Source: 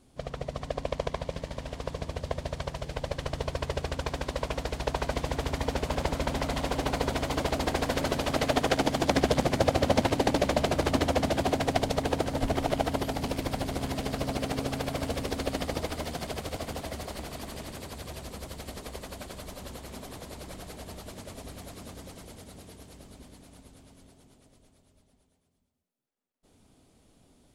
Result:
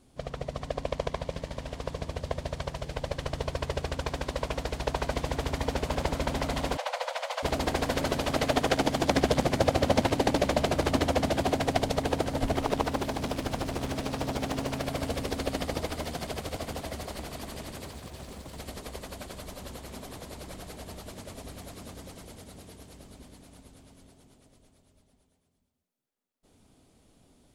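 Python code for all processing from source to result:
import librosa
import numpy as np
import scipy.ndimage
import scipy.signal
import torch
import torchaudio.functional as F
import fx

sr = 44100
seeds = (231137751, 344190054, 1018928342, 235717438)

y = fx.chain(x, sr, fx.cheby1_highpass(hz=500.0, order=8),
    fx.high_shelf(hz=9500.0, db=-11.0), at=(6.77, 7.43))
y = fx.chain(y, sr, fx.hum_notches(base_hz=50, count=3),
    fx.doppler_dist(depth_ms=0.71), at=(12.61, 14.85))
y = fx.chain(y, sr, fx.over_compress(threshold_db=-42.0, ratio=-0.5),
    fx.mod_noise(seeds[0], snr_db=21),
    fx.doppler_dist(depth_ms=0.2), at=(17.85, 18.57))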